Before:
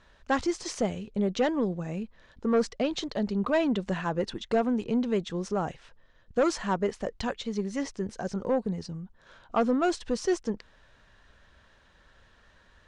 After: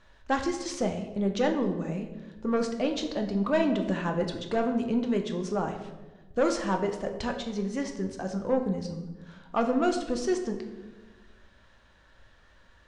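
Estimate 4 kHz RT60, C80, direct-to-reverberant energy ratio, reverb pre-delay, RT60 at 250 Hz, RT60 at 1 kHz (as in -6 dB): 0.80 s, 10.5 dB, 4.0 dB, 3 ms, 1.6 s, 1.0 s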